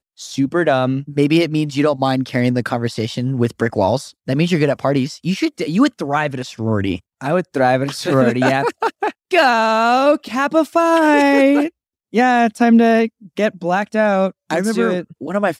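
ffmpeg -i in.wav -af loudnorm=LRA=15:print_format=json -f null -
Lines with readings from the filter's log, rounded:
"input_i" : "-16.9",
"input_tp" : "-2.3",
"input_lra" : "3.8",
"input_thresh" : "-27.0",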